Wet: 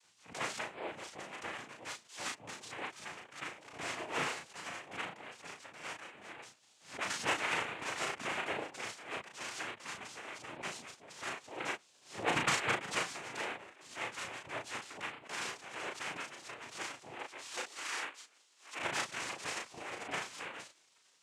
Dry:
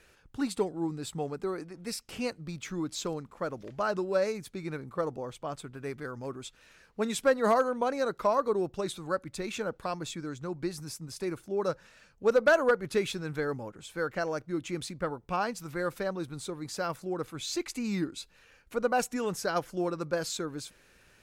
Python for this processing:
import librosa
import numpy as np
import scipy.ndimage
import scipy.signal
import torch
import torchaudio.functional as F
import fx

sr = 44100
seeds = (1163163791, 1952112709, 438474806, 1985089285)

y = scipy.signal.sosfilt(scipy.signal.butter(2, 3200.0, 'lowpass', fs=sr, output='sos'), x)
y = fx.spec_gate(y, sr, threshold_db=-20, keep='weak')
y = fx.highpass(y, sr, hz=fx.line((17.1, 280.0), (18.78, 890.0)), slope=24, at=(17.1, 18.78), fade=0.02)
y = fx.noise_vocoder(y, sr, seeds[0], bands=4)
y = fx.doubler(y, sr, ms=35.0, db=-4.0)
y = fx.pre_swell(y, sr, db_per_s=140.0)
y = F.gain(torch.from_numpy(y), 7.0).numpy()